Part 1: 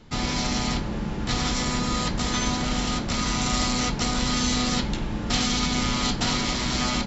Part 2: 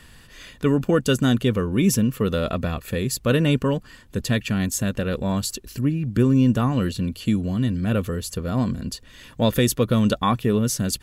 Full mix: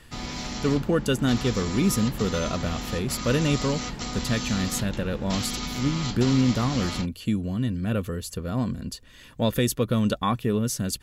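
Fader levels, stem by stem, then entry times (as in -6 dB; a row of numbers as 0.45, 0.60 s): -7.5, -4.0 dB; 0.00, 0.00 s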